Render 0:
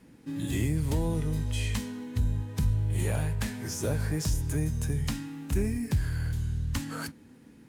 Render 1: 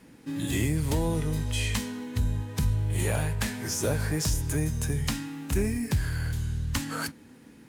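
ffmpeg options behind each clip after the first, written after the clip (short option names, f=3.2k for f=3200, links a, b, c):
-af "lowshelf=f=360:g=-5.5,volume=5.5dB"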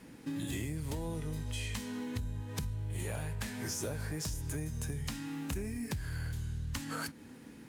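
-af "acompressor=threshold=-35dB:ratio=6"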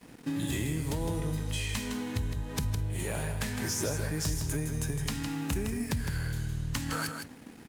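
-af "aeval=exprs='sgn(val(0))*max(abs(val(0))-0.0015,0)':c=same,aecho=1:1:160:0.447,volume=6dB"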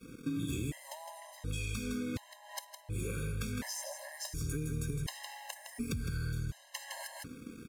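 -af "acompressor=threshold=-34dB:ratio=6,afftfilt=real='re*gt(sin(2*PI*0.69*pts/sr)*(1-2*mod(floor(b*sr/1024/540),2)),0)':imag='im*gt(sin(2*PI*0.69*pts/sr)*(1-2*mod(floor(b*sr/1024/540),2)),0)':win_size=1024:overlap=0.75,volume=2dB"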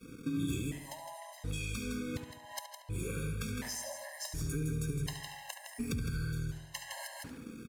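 -filter_complex "[0:a]asplit=2[a][b];[b]adelay=71,lowpass=f=3.9k:p=1,volume=-8dB,asplit=2[c][d];[d]adelay=71,lowpass=f=3.9k:p=1,volume=0.53,asplit=2[e][f];[f]adelay=71,lowpass=f=3.9k:p=1,volume=0.53,asplit=2[g][h];[h]adelay=71,lowpass=f=3.9k:p=1,volume=0.53,asplit=2[i][j];[j]adelay=71,lowpass=f=3.9k:p=1,volume=0.53,asplit=2[k][l];[l]adelay=71,lowpass=f=3.9k:p=1,volume=0.53[m];[a][c][e][g][i][k][m]amix=inputs=7:normalize=0"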